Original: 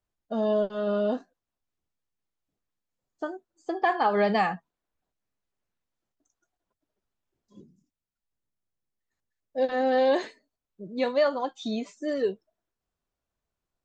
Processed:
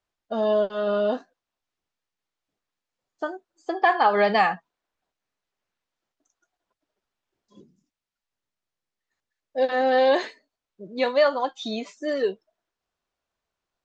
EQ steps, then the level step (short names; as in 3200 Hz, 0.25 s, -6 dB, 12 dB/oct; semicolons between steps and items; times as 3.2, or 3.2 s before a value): LPF 6000 Hz 12 dB/oct; low shelf 330 Hz -11.5 dB; +6.5 dB